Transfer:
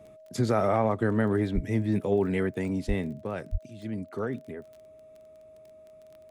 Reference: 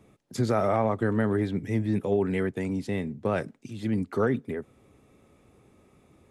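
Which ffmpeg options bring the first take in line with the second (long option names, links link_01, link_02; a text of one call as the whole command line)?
ffmpeg -i in.wav -filter_complex "[0:a]adeclick=threshold=4,bandreject=frequency=630:width=30,asplit=3[link_01][link_02][link_03];[link_01]afade=type=out:start_time=1.54:duration=0.02[link_04];[link_02]highpass=frequency=140:width=0.5412,highpass=frequency=140:width=1.3066,afade=type=in:start_time=1.54:duration=0.02,afade=type=out:start_time=1.66:duration=0.02[link_05];[link_03]afade=type=in:start_time=1.66:duration=0.02[link_06];[link_04][link_05][link_06]amix=inputs=3:normalize=0,asplit=3[link_07][link_08][link_09];[link_07]afade=type=out:start_time=2.87:duration=0.02[link_10];[link_08]highpass=frequency=140:width=0.5412,highpass=frequency=140:width=1.3066,afade=type=in:start_time=2.87:duration=0.02,afade=type=out:start_time=2.99:duration=0.02[link_11];[link_09]afade=type=in:start_time=2.99:duration=0.02[link_12];[link_10][link_11][link_12]amix=inputs=3:normalize=0,asplit=3[link_13][link_14][link_15];[link_13]afade=type=out:start_time=3.51:duration=0.02[link_16];[link_14]highpass=frequency=140:width=0.5412,highpass=frequency=140:width=1.3066,afade=type=in:start_time=3.51:duration=0.02,afade=type=out:start_time=3.63:duration=0.02[link_17];[link_15]afade=type=in:start_time=3.63:duration=0.02[link_18];[link_16][link_17][link_18]amix=inputs=3:normalize=0,asetnsamples=nb_out_samples=441:pad=0,asendcmd='3.22 volume volume 7dB',volume=0dB" out.wav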